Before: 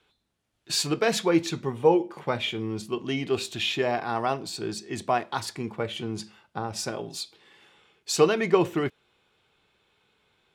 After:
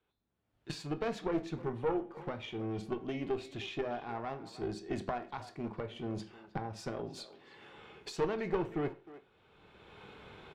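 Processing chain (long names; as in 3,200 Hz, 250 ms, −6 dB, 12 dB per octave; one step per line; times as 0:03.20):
camcorder AGC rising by 22 dB per second
low-pass filter 1,200 Hz 6 dB per octave
tube saturation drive 17 dB, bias 0.7
far-end echo of a speakerphone 310 ms, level −15 dB
convolution reverb RT60 0.35 s, pre-delay 18 ms, DRR 11.5 dB
level −7.5 dB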